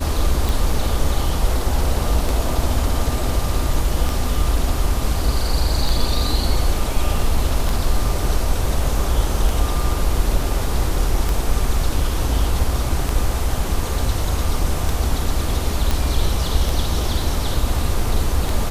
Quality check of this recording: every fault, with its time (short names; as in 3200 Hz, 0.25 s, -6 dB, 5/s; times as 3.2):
tick 33 1/3 rpm
15.91 pop